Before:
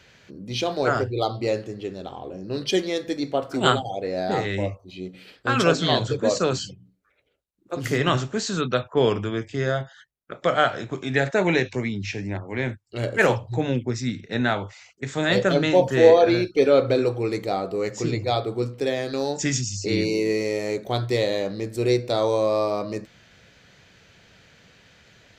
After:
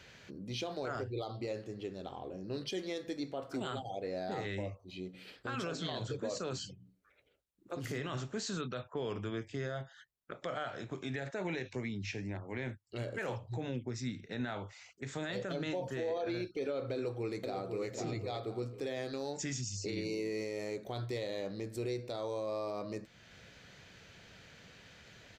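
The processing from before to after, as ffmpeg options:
-filter_complex "[0:a]asplit=2[a][b];[b]afade=t=in:st=16.93:d=0.01,afade=t=out:st=17.89:d=0.01,aecho=0:1:500|1000|1500|2000:0.446684|0.134005|0.0402015|0.0120605[c];[a][c]amix=inputs=2:normalize=0,acompressor=threshold=-48dB:ratio=1.5,alimiter=level_in=2dB:limit=-24dB:level=0:latency=1:release=40,volume=-2dB,volume=-2.5dB"

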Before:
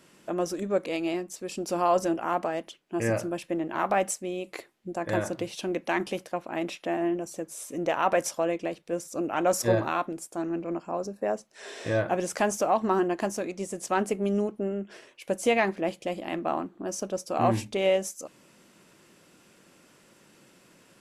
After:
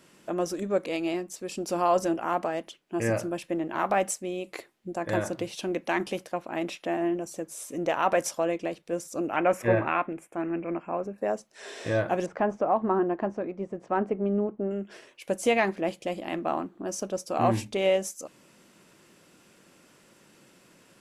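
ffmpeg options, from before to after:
-filter_complex "[0:a]asettb=1/sr,asplit=3[a][b][c];[a]atrim=end=9.364[d];[b]atrim=start=9.36:end=11.18,asetpts=PTS-STARTPTS,afade=t=in:d=0.004:c=qsin,afade=t=out:st=1.816:d=0.004:c=qsin,highshelf=f=3.3k:t=q:w=3:g=-12[e];[c]atrim=start=11.176[f];[d][e]acrossfade=d=0.004:c1=hsin:c2=qsin[g];[g][f]acrossfade=d=0.004:c1=qsin:c2=hsin,asettb=1/sr,asplit=3[h][i][j];[h]atrim=end=12.264[k];[i]atrim=start=12.26:end=14.71,asetpts=PTS-STARTPTS,afade=t=in:d=0.004:c=qsin,afade=t=out:st=2.446:d=0.004:c=qsin,lowpass=1.4k[l];[j]atrim=start=14.706[m];[k][l]acrossfade=d=0.004:c1=hsin:c2=qsin[n];[n][m]acrossfade=d=0.004:c1=qsin:c2=hsin"

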